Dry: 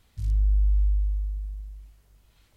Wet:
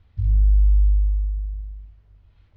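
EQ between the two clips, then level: distance through air 280 m; bass shelf 64 Hz +6.5 dB; peaking EQ 85 Hz +14 dB 0.52 oct; 0.0 dB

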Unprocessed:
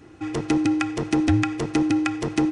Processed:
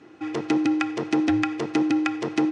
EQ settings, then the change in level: band-pass 210–5200 Hz; 0.0 dB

